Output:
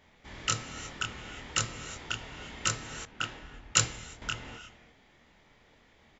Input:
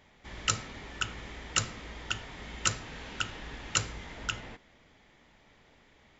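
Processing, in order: doubling 26 ms -4 dB; gated-style reverb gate 380 ms rising, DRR 11.5 dB; 3.05–4.22 s: three bands expanded up and down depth 100%; trim -2 dB

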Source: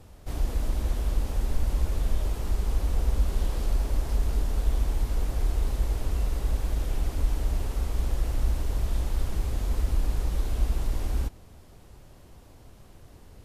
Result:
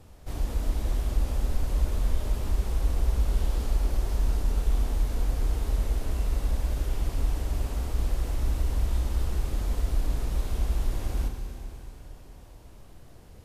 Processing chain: Schroeder reverb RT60 3.6 s, combs from 25 ms, DRR 4.5 dB; trim -1.5 dB

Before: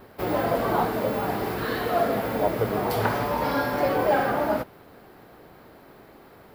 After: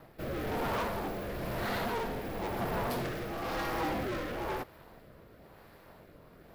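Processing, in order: ring modulator 240 Hz; hard clipper -28.5 dBFS, distortion -6 dB; rotary cabinet horn 1 Hz

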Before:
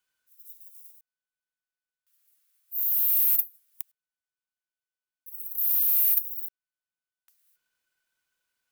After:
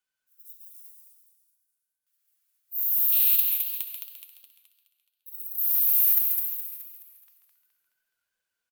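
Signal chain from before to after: spectral noise reduction 6 dB; 3.12–5.44 s: high-order bell 3.3 kHz +12.5 dB 1 oct; frequency-shifting echo 137 ms, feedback 41%, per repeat +73 Hz, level -7.5 dB; modulated delay 211 ms, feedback 50%, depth 110 cents, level -5 dB

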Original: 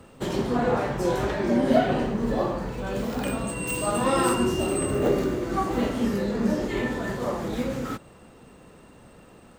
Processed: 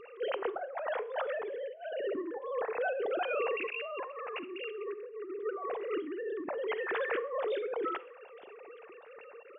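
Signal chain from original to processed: formants replaced by sine waves; compressor with a negative ratio -34 dBFS, ratio -1; Schroeder reverb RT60 0.47 s, combs from 32 ms, DRR 16.5 dB; trim -3.5 dB

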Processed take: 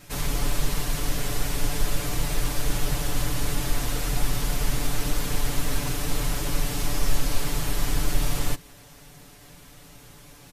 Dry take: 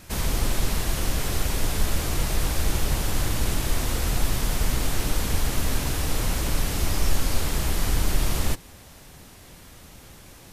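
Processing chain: comb 6.9 ms, depth 93%; trim -4 dB

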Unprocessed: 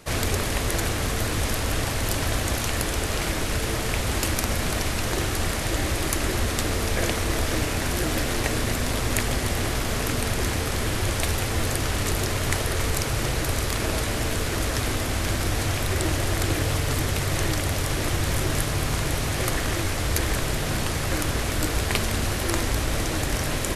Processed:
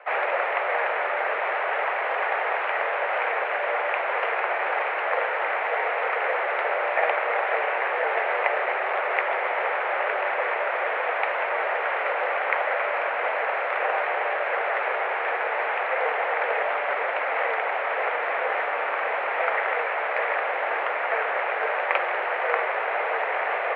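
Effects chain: mistuned SSB +140 Hz 390–2200 Hz; trim +6.5 dB

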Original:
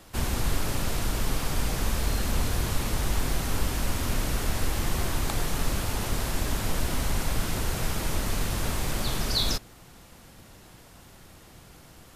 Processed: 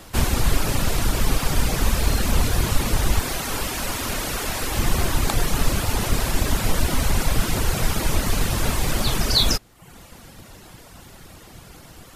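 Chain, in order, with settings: rattle on loud lows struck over -30 dBFS, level -36 dBFS; reverb removal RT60 0.69 s; 3.19–4.72 s: bass shelf 220 Hz -11.5 dB; trim +8.5 dB

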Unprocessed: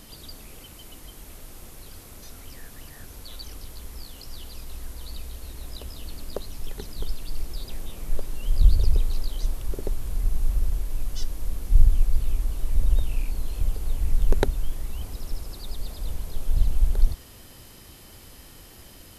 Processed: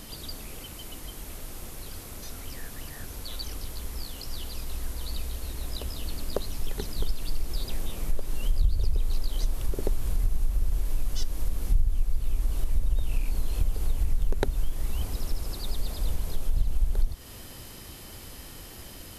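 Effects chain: compression 4:1, threshold -23 dBFS, peak gain reduction 14 dB; trim +3.5 dB

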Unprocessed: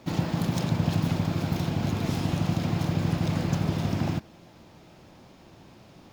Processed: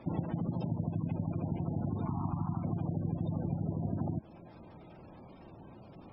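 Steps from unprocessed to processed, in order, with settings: 2.03–2.64 s: ten-band graphic EQ 500 Hz -11 dB, 1 kHz +10 dB, 2 kHz -3 dB, 4 kHz -6 dB, 8 kHz -3 dB, 16 kHz -10 dB; compression 4:1, threshold -31 dBFS, peak gain reduction 10.5 dB; 0.47–1.05 s: peaking EQ 1.9 kHz -6.5 dB 0.31 oct; spectral gate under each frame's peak -20 dB strong

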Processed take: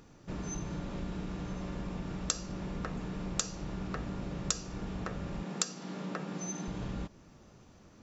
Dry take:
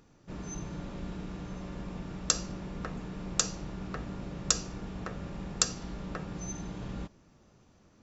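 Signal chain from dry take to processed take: 5.43–6.68 s: steep high-pass 160 Hz; compression 2:1, threshold -41 dBFS, peak gain reduction 12 dB; trim +4.5 dB

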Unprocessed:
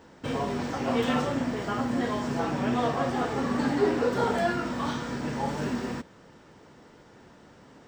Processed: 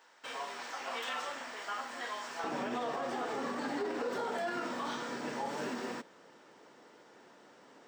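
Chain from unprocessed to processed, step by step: high-pass 1 kHz 12 dB/octave, from 2.44 s 340 Hz; peak limiter -25 dBFS, peak gain reduction 11 dB; trim -3 dB

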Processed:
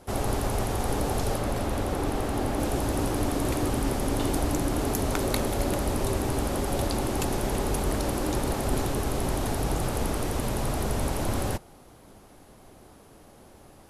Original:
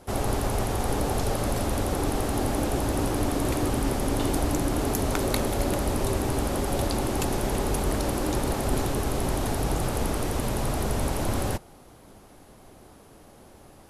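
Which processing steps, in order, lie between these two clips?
1.38–2.60 s: tone controls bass -1 dB, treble -5 dB; trim -1 dB

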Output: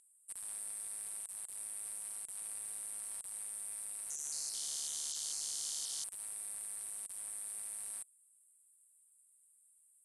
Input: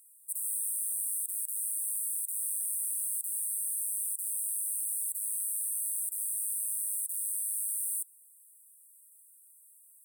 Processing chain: saturation -26.5 dBFS, distortion -19 dB; 3.88–6.04 s: ever faster or slower copies 219 ms, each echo -6 st, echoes 3, each echo -6 dB; Bessel low-pass 6.4 kHz, order 6; trim +1.5 dB

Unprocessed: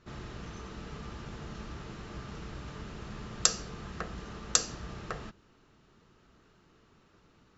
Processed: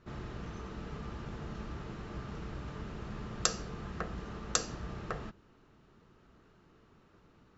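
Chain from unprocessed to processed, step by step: treble shelf 2.7 kHz -8.5 dB; trim +1 dB

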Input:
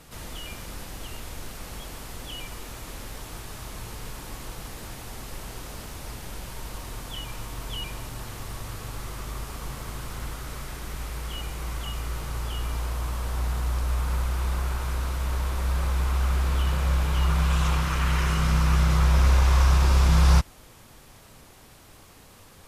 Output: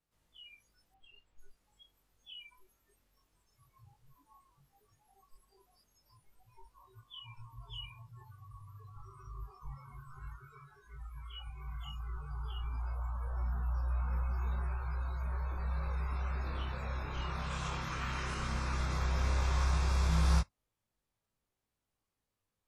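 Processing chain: spectral noise reduction 28 dB; chorus 0.14 Hz, delay 18.5 ms, depth 3.7 ms; 0.94–1.57 s: level-controlled noise filter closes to 2.5 kHz, open at -41 dBFS; trim -6.5 dB

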